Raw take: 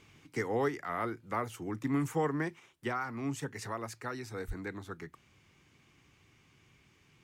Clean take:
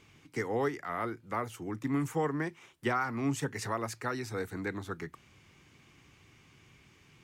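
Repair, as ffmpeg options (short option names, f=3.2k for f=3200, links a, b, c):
-filter_complex "[0:a]asplit=3[a][b][c];[a]afade=t=out:st=4.47:d=0.02[d];[b]highpass=f=140:w=0.5412,highpass=f=140:w=1.3066,afade=t=in:st=4.47:d=0.02,afade=t=out:st=4.59:d=0.02[e];[c]afade=t=in:st=4.59:d=0.02[f];[d][e][f]amix=inputs=3:normalize=0,asetnsamples=n=441:p=0,asendcmd='2.6 volume volume 4.5dB',volume=0dB"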